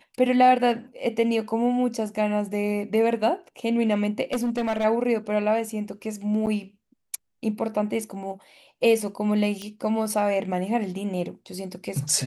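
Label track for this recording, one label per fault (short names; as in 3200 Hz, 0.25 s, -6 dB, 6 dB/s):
4.320000	4.850000	clipped -21 dBFS
6.460000	6.470000	gap 9.1 ms
9.620000	9.620000	pop -21 dBFS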